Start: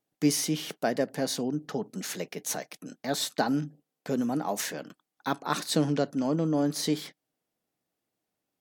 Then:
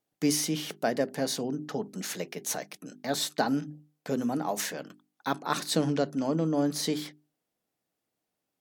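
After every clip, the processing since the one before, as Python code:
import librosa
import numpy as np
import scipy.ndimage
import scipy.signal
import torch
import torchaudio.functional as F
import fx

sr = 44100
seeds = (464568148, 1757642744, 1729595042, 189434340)

y = fx.hum_notches(x, sr, base_hz=50, count=8)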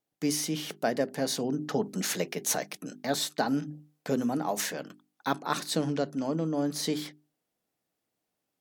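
y = fx.rider(x, sr, range_db=5, speed_s=0.5)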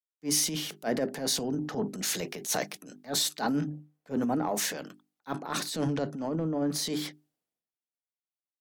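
y = fx.transient(x, sr, attack_db=-9, sustain_db=6)
y = fx.band_widen(y, sr, depth_pct=70)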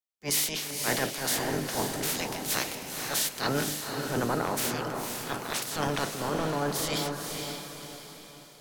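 y = fx.spec_clip(x, sr, under_db=21)
y = fx.echo_diffused(y, sr, ms=501, feedback_pct=45, wet_db=-4.5)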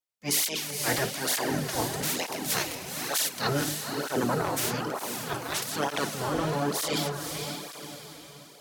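y = fx.flanger_cancel(x, sr, hz=1.1, depth_ms=5.2)
y = F.gain(torch.from_numpy(y), 4.0).numpy()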